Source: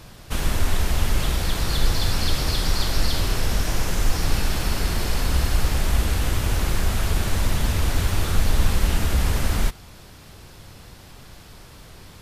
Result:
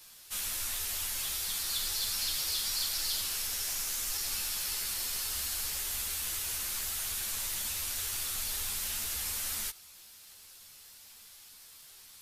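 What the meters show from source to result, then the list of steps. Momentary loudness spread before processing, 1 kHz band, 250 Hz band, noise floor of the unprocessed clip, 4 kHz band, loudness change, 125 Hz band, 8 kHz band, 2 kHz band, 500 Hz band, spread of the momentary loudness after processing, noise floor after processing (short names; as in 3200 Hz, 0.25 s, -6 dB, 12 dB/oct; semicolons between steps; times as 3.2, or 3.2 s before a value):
2 LU, -16.5 dB, -27.0 dB, -45 dBFS, -5.0 dB, -7.5 dB, -29.5 dB, +0.5 dB, -11.0 dB, -22.5 dB, 20 LU, -54 dBFS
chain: pre-emphasis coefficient 0.97; crackle 100/s -50 dBFS; ensemble effect; gain +3 dB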